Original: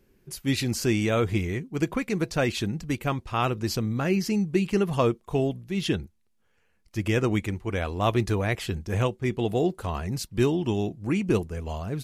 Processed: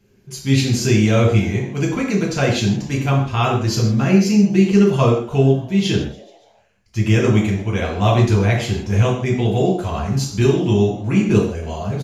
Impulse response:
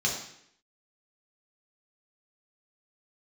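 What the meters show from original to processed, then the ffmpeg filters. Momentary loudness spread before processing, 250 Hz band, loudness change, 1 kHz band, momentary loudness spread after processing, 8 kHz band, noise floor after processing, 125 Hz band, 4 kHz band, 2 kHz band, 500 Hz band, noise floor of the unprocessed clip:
6 LU, +10.0 dB, +9.5 dB, +7.0 dB, 8 LU, +8.5 dB, −54 dBFS, +12.0 dB, +8.0 dB, +7.0 dB, +8.0 dB, −67 dBFS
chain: -filter_complex "[0:a]asplit=5[link_01][link_02][link_03][link_04][link_05];[link_02]adelay=141,afreqshift=120,volume=-22dB[link_06];[link_03]adelay=282,afreqshift=240,volume=-26.7dB[link_07];[link_04]adelay=423,afreqshift=360,volume=-31.5dB[link_08];[link_05]adelay=564,afreqshift=480,volume=-36.2dB[link_09];[link_01][link_06][link_07][link_08][link_09]amix=inputs=5:normalize=0[link_10];[1:a]atrim=start_sample=2205,afade=type=out:start_time=0.22:duration=0.01,atrim=end_sample=10143[link_11];[link_10][link_11]afir=irnorm=-1:irlink=0,volume=-2dB"

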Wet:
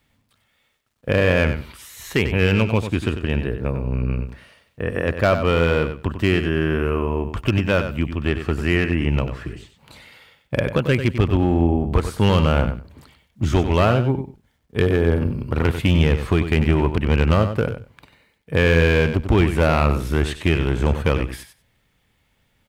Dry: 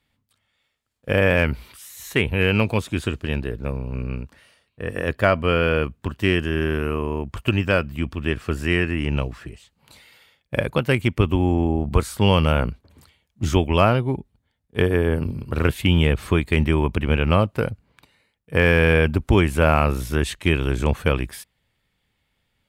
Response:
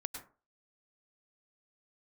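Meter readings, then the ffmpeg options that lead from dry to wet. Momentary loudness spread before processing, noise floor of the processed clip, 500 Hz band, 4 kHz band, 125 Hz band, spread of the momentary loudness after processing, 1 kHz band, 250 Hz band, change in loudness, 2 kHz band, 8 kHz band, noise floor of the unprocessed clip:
11 LU, −66 dBFS, +1.5 dB, −0.5 dB, +2.0 dB, 10 LU, 0.0 dB, +1.5 dB, +1.0 dB, −0.5 dB, −2.0 dB, −73 dBFS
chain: -filter_complex "[0:a]highshelf=frequency=4500:gain=-9.5,asplit=2[link_01][link_02];[link_02]acompressor=threshold=-31dB:ratio=6,volume=1.5dB[link_03];[link_01][link_03]amix=inputs=2:normalize=0,asoftclip=type=hard:threshold=-10dB,acrusher=bits=11:mix=0:aa=0.000001,aecho=1:1:95|190:0.335|0.0536"

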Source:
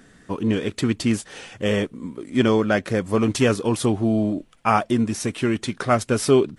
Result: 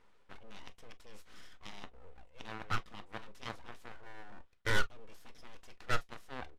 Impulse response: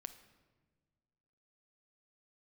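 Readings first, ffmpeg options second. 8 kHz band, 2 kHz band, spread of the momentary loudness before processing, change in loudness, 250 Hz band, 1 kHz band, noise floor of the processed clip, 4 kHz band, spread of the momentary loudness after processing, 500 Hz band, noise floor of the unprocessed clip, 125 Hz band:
−22.0 dB, −11.0 dB, 7 LU, −19.0 dB, −32.5 dB, −18.0 dB, −62 dBFS, −14.5 dB, 23 LU, −27.0 dB, −55 dBFS, −22.0 dB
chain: -filter_complex "[0:a]bass=frequency=250:gain=10,treble=frequency=4000:gain=4,areverse,acompressor=threshold=-23dB:ratio=5,areverse,asplit=3[link_01][link_02][link_03];[link_01]bandpass=frequency=730:width_type=q:width=8,volume=0dB[link_04];[link_02]bandpass=frequency=1090:width_type=q:width=8,volume=-6dB[link_05];[link_03]bandpass=frequency=2440:width_type=q:width=8,volume=-9dB[link_06];[link_04][link_05][link_06]amix=inputs=3:normalize=0,aeval=exprs='abs(val(0))':channel_layout=same,aeval=exprs='0.0708*(cos(1*acos(clip(val(0)/0.0708,-1,1)))-cos(1*PI/2))+0.0141*(cos(7*acos(clip(val(0)/0.0708,-1,1)))-cos(7*PI/2))':channel_layout=same,aeval=exprs='clip(val(0),-1,0.0266)':channel_layout=same,aresample=32000,aresample=44100[link_07];[1:a]atrim=start_sample=2205,atrim=end_sample=3528,asetrate=70560,aresample=44100[link_08];[link_07][link_08]afir=irnorm=-1:irlink=0,volume=17dB"

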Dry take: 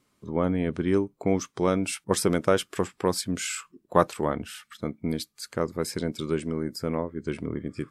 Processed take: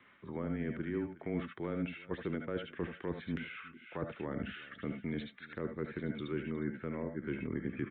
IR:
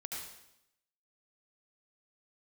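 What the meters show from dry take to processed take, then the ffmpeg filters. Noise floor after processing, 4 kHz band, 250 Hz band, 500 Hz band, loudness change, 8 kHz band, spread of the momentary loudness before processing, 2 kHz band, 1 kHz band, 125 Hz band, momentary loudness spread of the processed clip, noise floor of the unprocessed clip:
−59 dBFS, −16.5 dB, −9.5 dB, −13.5 dB, −11.5 dB, below −40 dB, 9 LU, −7.5 dB, −17.5 dB, −9.0 dB, 5 LU, −72 dBFS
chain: -filter_complex "[0:a]areverse,acompressor=threshold=-35dB:ratio=6,areverse,equalizer=frequency=1800:width=1.4:gain=14.5,aecho=1:1:361:0.0841,afreqshift=-17[link_01];[1:a]atrim=start_sample=2205,atrim=end_sample=3528[link_02];[link_01][link_02]afir=irnorm=-1:irlink=0,aresample=8000,aresample=44100,acrossover=split=450[link_03][link_04];[link_04]acompressor=threshold=-56dB:ratio=5[link_05];[link_03][link_05]amix=inputs=2:normalize=0,lowshelf=frequency=99:gain=-8.5,volume=8.5dB"

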